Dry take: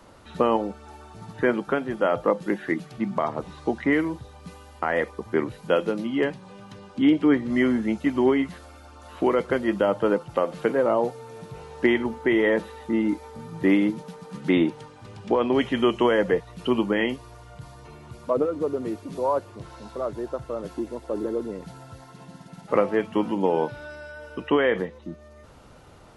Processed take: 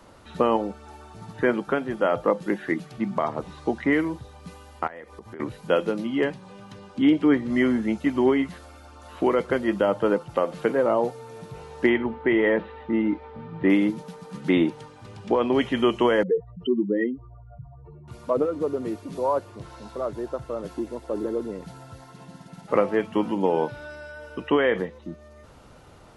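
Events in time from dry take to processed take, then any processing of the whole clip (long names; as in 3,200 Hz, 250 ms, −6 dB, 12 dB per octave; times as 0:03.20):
0:04.87–0:05.40: downward compressor 8 to 1, threshold −37 dBFS
0:11.89–0:13.70: low-pass filter 3,200 Hz 24 dB per octave
0:16.23–0:18.08: expanding power law on the bin magnitudes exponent 2.7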